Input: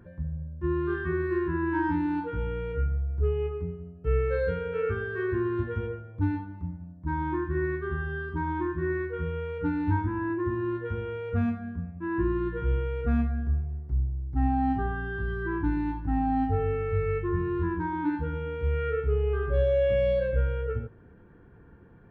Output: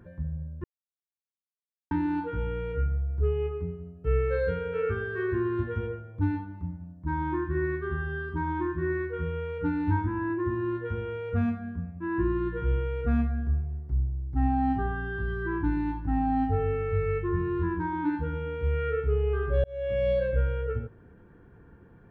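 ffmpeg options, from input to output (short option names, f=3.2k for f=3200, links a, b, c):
-filter_complex "[0:a]asplit=4[a][b][c][d];[a]atrim=end=0.64,asetpts=PTS-STARTPTS,afade=t=out:st=0.636:d=0.004:c=hsin[e];[b]atrim=start=0.64:end=1.91,asetpts=PTS-STARTPTS,volume=0[f];[c]atrim=start=1.91:end=19.64,asetpts=PTS-STARTPTS,afade=t=in:d=0.004:c=hsin,afade=t=out:st=17.726:d=0.004:c=hsin[g];[d]atrim=start=19.64,asetpts=PTS-STARTPTS,afade=t=in:d=0.47[h];[e][f][g][h]concat=n=4:v=0:a=1"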